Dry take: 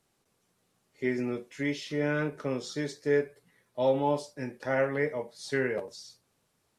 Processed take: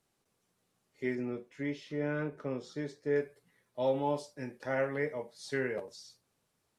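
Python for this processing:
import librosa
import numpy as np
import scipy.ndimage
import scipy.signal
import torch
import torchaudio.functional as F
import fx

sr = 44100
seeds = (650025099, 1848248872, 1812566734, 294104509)

y = fx.high_shelf(x, sr, hz=2800.0, db=-10.5, at=(1.15, 3.16))
y = y * librosa.db_to_amplitude(-4.5)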